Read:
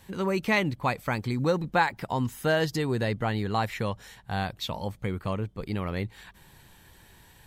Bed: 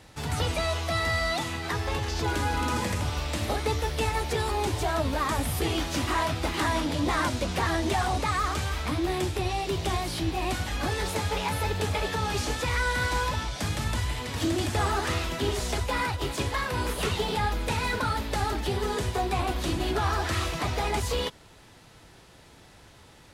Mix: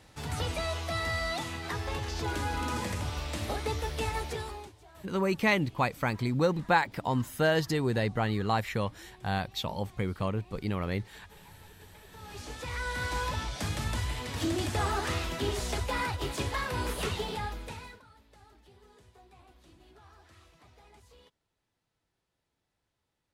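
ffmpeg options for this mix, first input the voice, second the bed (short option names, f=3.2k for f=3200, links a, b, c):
-filter_complex "[0:a]adelay=4950,volume=-1dB[a];[1:a]volume=19.5dB,afade=t=out:st=4.18:d=0.55:silence=0.0707946,afade=t=in:st=12.07:d=1.35:silence=0.0595662,afade=t=out:st=16.95:d=1.07:silence=0.0473151[b];[a][b]amix=inputs=2:normalize=0"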